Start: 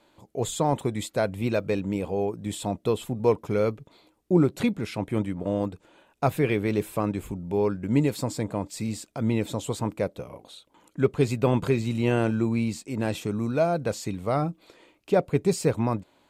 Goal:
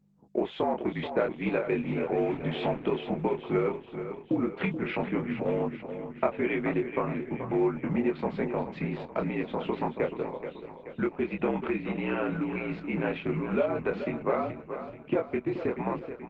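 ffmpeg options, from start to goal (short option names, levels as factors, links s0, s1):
-filter_complex "[0:a]asettb=1/sr,asplit=3[s0][s1][s2];[s0]atrim=end=2.154[s3];[s1]atrim=start=2.15:end=2.81,asetpts=PTS-STARTPTS,afade=t=in:d=0.004:c=qsin,afade=t=out:st=0.656:d=0.004:c=qsin,aeval=exprs='val(0)+0.5*0.0168*sgn(val(0))':c=same[s4];[s2]atrim=start=2.806[s5];[s3][s4]acrossfade=d=0.004:c1=hsin:c2=qsin[s6];[s6][s5]acrossfade=d=0.004:c1=qsin:c2=hsin,anlmdn=0.398,lowshelf=f=270:g=-5,acompressor=threshold=0.0251:ratio=10,aeval=exprs='val(0)+0.000891*(sin(2*PI*50*n/s)+sin(2*PI*2*50*n/s)/2+sin(2*PI*3*50*n/s)/3+sin(2*PI*4*50*n/s)/4+sin(2*PI*5*50*n/s)/5)':c=same,crystalizer=i=2:c=0,asplit=2[s7][s8];[s8]adelay=24,volume=0.668[s9];[s7][s9]amix=inputs=2:normalize=0,aecho=1:1:430|860|1290|1720|2150|2580:0.335|0.178|0.0941|0.0499|0.0264|0.014,highpass=f=230:t=q:w=0.5412,highpass=f=230:t=q:w=1.307,lowpass=f=2700:t=q:w=0.5176,lowpass=f=2700:t=q:w=0.7071,lowpass=f=2700:t=q:w=1.932,afreqshift=-52,volume=2.37" -ar 48000 -c:a libopus -b:a 12k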